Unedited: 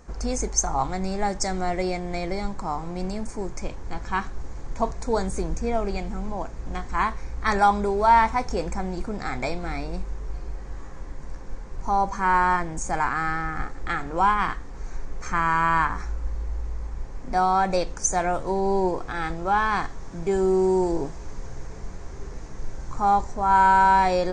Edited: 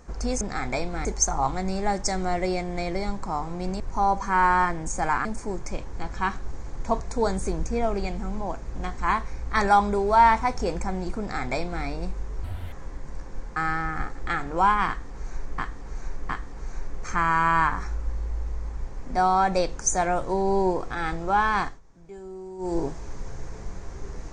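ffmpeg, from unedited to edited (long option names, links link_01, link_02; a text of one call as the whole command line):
ffmpeg -i in.wav -filter_complex "[0:a]asplit=12[link_01][link_02][link_03][link_04][link_05][link_06][link_07][link_08][link_09][link_10][link_11][link_12];[link_01]atrim=end=0.412[link_13];[link_02]atrim=start=9.108:end=9.752[link_14];[link_03]atrim=start=0.408:end=3.162[link_15];[link_04]atrim=start=11.708:end=13.162[link_16];[link_05]atrim=start=3.158:end=10.354[link_17];[link_06]atrim=start=10.35:end=10.87,asetpts=PTS-STARTPTS,asetrate=81144,aresample=44100,atrim=end_sample=12463,asetpts=PTS-STARTPTS[link_18];[link_07]atrim=start=10.866:end=11.712[link_19];[link_08]atrim=start=13.158:end=15.182[link_20];[link_09]atrim=start=14.468:end=15.182[link_21];[link_10]atrim=start=14.468:end=19.98,asetpts=PTS-STARTPTS,afade=type=out:start_time=5.322:duration=0.19:silence=0.11885[link_22];[link_11]atrim=start=19.98:end=20.76,asetpts=PTS-STARTPTS,volume=-18.5dB[link_23];[link_12]atrim=start=20.76,asetpts=PTS-STARTPTS,afade=type=in:duration=0.19:silence=0.11885[link_24];[link_13][link_14]acrossfade=duration=0.004:curve1=hsin:curve2=hsin[link_25];[link_25][link_15]acrossfade=duration=0.004:curve1=hsin:curve2=hsin[link_26];[link_26][link_16]acrossfade=duration=0.004:curve1=hsin:curve2=hsin[link_27];[link_27][link_17]acrossfade=duration=0.004:curve1=hsin:curve2=hsin[link_28];[link_28][link_18]acrossfade=duration=0.004:curve1=hsin:curve2=hsin[link_29];[link_29][link_19]acrossfade=duration=0.004:curve1=hsin:curve2=hsin[link_30];[link_30][link_20]acrossfade=duration=0.004:curve1=hsin:curve2=hsin[link_31];[link_31][link_21]acrossfade=duration=0.004:curve1=hsin:curve2=hsin[link_32];[link_22][link_23][link_24]concat=n=3:v=0:a=1[link_33];[link_32][link_33]acrossfade=duration=0.004:curve1=hsin:curve2=hsin" out.wav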